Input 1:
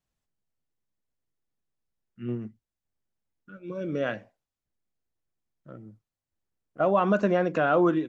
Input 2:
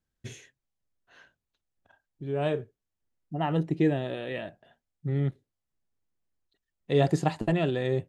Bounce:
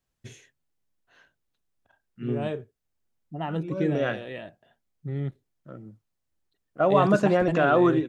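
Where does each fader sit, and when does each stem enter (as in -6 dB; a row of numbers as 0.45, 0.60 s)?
+2.0, -3.0 dB; 0.00, 0.00 s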